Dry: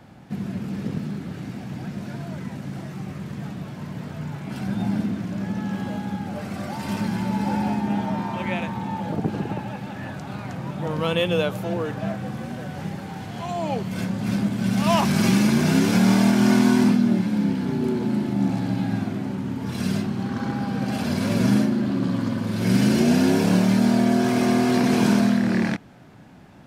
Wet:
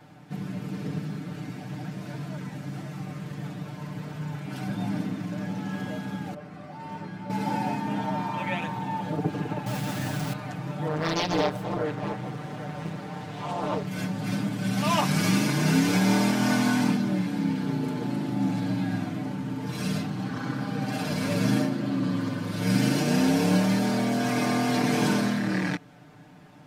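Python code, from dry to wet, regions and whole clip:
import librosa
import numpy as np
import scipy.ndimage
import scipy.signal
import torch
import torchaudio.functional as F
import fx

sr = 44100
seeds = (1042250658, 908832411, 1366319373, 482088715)

y = fx.chain(x, sr, fx.lowpass(hz=1700.0, slope=6),
    fx.comb_fb(f0_hz=82.0, decay_s=0.24, harmonics='all', damping=0.0, mix_pct=80), at=(6.34, 7.3))
y = fx.chain(y, sr, fx.low_shelf(hz=240.0, db=8.0),
    fx.quant_dither(seeds[0], bits=6, dither='none'),
    fx.env_flatten(amount_pct=50), at=(9.66, 10.33))
y = fx.chain(y, sr, fx.high_shelf(hz=6800.0, db=-5.5),
    fx.doppler_dist(depth_ms=1.0), at=(10.87, 13.87))
y = fx.low_shelf(y, sr, hz=140.0, db=-5.5)
y = y + 0.99 * np.pad(y, (int(6.7 * sr / 1000.0), 0))[:len(y)]
y = F.gain(torch.from_numpy(y), -4.5).numpy()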